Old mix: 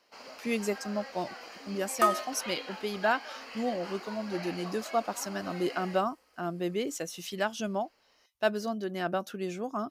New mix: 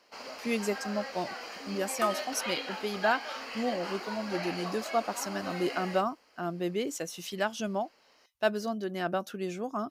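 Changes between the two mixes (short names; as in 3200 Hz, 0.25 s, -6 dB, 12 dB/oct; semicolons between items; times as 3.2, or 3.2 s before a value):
first sound +4.5 dB; second sound -7.0 dB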